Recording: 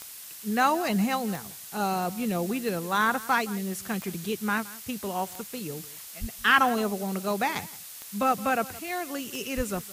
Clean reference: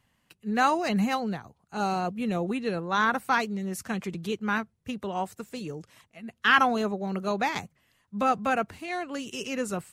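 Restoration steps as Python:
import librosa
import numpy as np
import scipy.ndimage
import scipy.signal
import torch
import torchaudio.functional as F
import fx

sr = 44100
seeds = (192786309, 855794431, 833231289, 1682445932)

y = fx.fix_declick_ar(x, sr, threshold=10.0)
y = fx.fix_deplosive(y, sr, at_s=(6.2, 9.56))
y = fx.noise_reduce(y, sr, print_start_s=7.64, print_end_s=8.14, reduce_db=25.0)
y = fx.fix_echo_inverse(y, sr, delay_ms=170, level_db=-19.0)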